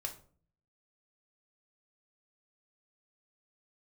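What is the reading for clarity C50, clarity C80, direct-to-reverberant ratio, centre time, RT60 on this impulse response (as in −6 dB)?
12.0 dB, 17.0 dB, 2.0 dB, 12 ms, 0.45 s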